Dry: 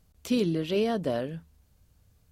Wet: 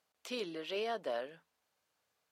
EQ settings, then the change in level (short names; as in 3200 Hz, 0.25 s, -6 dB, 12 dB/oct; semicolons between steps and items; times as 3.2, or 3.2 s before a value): HPF 680 Hz 12 dB/oct; LPF 3400 Hz 6 dB/oct; -2.5 dB